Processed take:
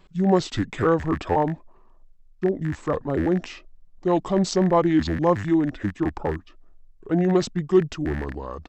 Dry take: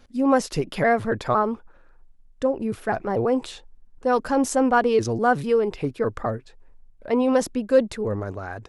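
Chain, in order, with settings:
loose part that buzzes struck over −32 dBFS, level −24 dBFS
pitch shifter −6 semitones

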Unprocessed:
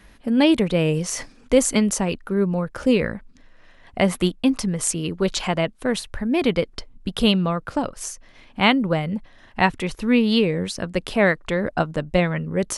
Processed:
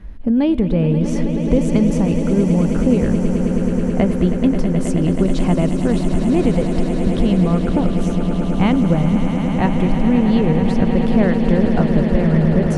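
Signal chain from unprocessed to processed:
spectral tilt −4 dB per octave
downward compressor, threshold −13 dBFS, peak gain reduction 10 dB
on a send: echo that builds up and dies away 107 ms, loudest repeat 8, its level −11 dB

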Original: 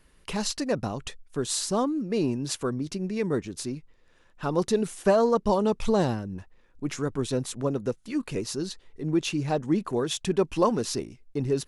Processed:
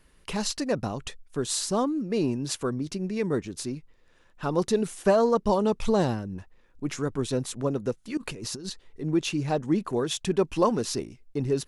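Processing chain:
0:08.17–0:08.70: compressor whose output falls as the input rises −37 dBFS, ratio −1

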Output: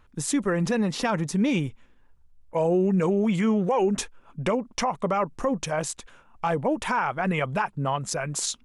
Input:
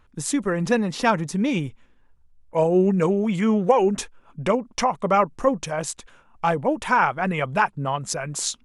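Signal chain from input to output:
brickwall limiter −15.5 dBFS, peak gain reduction 10 dB

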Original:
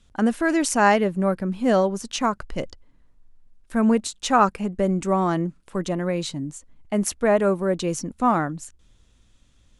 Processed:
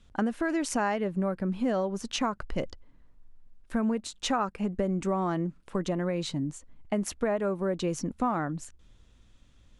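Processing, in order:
high-shelf EQ 5,900 Hz −9.5 dB
downward compressor 6 to 1, threshold −25 dBFS, peak gain reduction 12.5 dB

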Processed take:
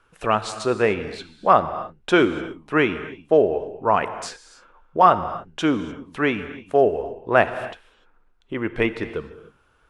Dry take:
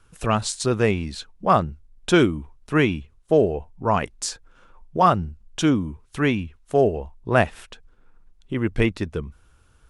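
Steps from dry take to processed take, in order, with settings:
bass and treble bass −13 dB, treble −13 dB
reverb whose tail is shaped and stops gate 320 ms flat, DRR 11 dB
level +3 dB

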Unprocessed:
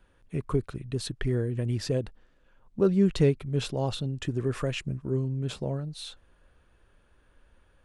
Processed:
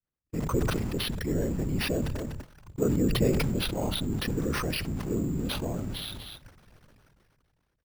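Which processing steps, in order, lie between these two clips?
converter with a step at zero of −36 dBFS
low-pass filter 3,800 Hz 12 dB per octave
notch filter 1,700 Hz, Q 27
noise gate −37 dBFS, range −59 dB
parametric band 260 Hz +5.5 dB 0.26 octaves
in parallel at +2 dB: downward compressor, threshold −34 dBFS, peak gain reduction 17 dB
on the sum: random phases in short frames
slap from a distant wall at 42 metres, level −29 dB
on a send at −24 dB: convolution reverb RT60 0.30 s, pre-delay 49 ms
on the sum: bad sample-rate conversion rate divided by 6×, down none, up hold
level that may fall only so fast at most 24 dB per second
level −7 dB

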